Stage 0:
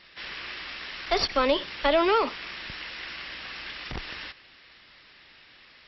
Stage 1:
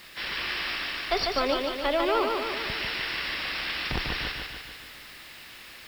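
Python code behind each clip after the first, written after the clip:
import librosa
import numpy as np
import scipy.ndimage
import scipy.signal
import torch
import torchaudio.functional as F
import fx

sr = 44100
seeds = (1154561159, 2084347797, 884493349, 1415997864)

y = fx.rider(x, sr, range_db=5, speed_s=0.5)
y = fx.dmg_noise_colour(y, sr, seeds[0], colour='white', level_db=-56.0)
y = fx.echo_feedback(y, sr, ms=147, feedback_pct=58, wet_db=-4)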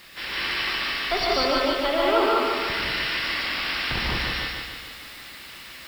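y = fx.rev_gated(x, sr, seeds[1], gate_ms=220, shape='rising', drr_db=-2.5)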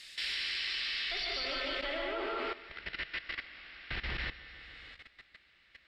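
y = fx.graphic_eq(x, sr, hz=(125, 250, 500, 1000, 2000, 4000, 8000), db=(-5, -7, -3, -11, 5, 8, 10))
y = fx.filter_sweep_lowpass(y, sr, from_hz=9500.0, to_hz=1500.0, start_s=0.3, end_s=2.14, q=0.76)
y = fx.level_steps(y, sr, step_db=15)
y = F.gain(torch.from_numpy(y), -6.0).numpy()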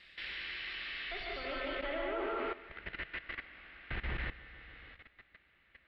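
y = fx.air_absorb(x, sr, metres=490.0)
y = F.gain(torch.from_numpy(y), 2.0).numpy()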